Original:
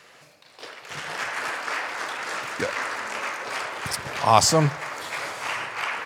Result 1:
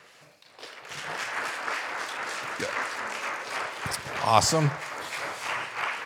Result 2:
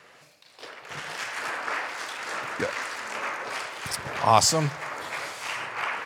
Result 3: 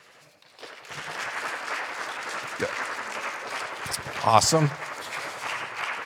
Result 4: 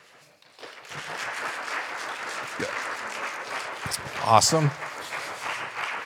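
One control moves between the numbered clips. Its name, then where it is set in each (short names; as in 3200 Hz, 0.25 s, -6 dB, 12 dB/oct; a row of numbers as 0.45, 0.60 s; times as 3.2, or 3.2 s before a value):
harmonic tremolo, rate: 3.6, 1.2, 11, 6.2 Hz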